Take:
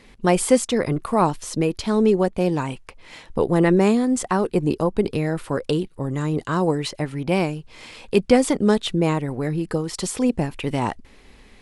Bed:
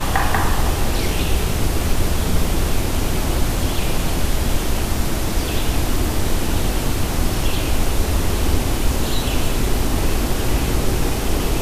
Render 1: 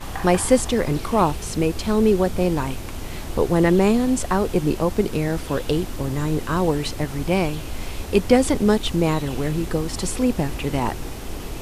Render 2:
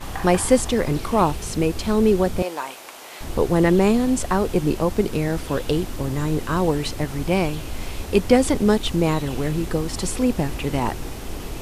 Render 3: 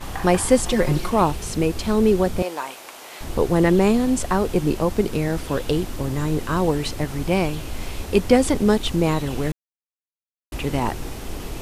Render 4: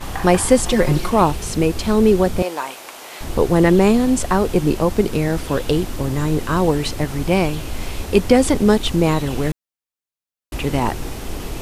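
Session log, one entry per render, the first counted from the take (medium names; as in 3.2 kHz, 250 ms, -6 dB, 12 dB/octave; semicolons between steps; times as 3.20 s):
add bed -12 dB
2.42–3.21 s: Chebyshev high-pass 670 Hz
0.63–1.10 s: comb 5.6 ms, depth 80%; 9.52–10.52 s: mute
trim +3.5 dB; peak limiter -1 dBFS, peak gain reduction 3 dB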